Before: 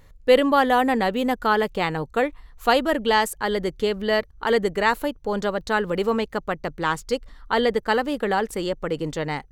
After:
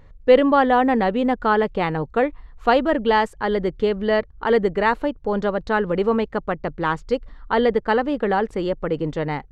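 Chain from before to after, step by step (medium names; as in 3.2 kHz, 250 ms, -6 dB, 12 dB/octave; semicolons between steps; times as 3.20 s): tape spacing loss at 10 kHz 25 dB; trim +4 dB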